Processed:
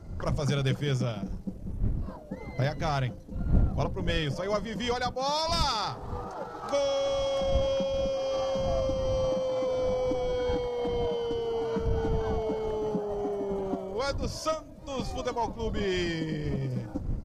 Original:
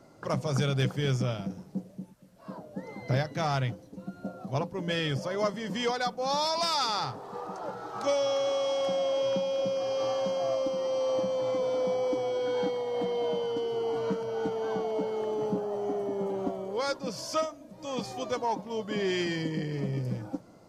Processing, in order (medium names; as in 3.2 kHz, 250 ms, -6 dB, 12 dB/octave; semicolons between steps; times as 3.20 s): wind noise 100 Hz -35 dBFS; tempo 1.2×